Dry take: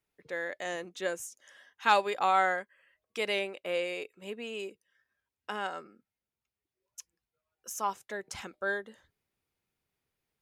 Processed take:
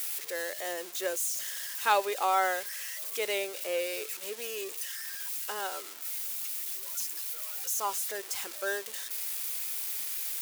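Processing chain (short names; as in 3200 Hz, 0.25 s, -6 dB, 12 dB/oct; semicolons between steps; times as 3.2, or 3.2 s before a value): switching spikes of -25.5 dBFS; HPF 58 Hz; resonant low shelf 270 Hz -12 dB, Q 1.5; gain -2 dB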